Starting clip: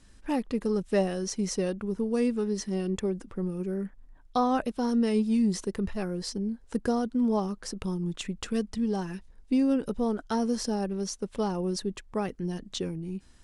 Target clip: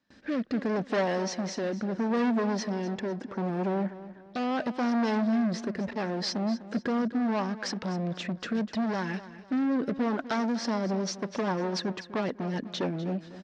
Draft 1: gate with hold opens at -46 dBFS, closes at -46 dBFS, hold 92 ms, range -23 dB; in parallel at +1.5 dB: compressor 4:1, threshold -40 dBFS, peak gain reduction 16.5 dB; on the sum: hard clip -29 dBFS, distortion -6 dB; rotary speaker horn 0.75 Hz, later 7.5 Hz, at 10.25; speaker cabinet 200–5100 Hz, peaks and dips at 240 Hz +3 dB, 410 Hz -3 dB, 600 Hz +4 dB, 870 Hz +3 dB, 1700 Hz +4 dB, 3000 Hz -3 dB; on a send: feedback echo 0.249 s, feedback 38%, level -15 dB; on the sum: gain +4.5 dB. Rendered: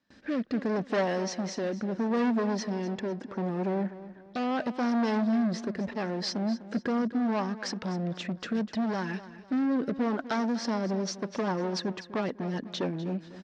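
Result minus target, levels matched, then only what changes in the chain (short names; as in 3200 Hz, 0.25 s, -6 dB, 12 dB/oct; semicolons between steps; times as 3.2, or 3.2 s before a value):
compressor: peak gain reduction +5.5 dB
change: compressor 4:1, threshold -32.5 dBFS, peak gain reduction 11 dB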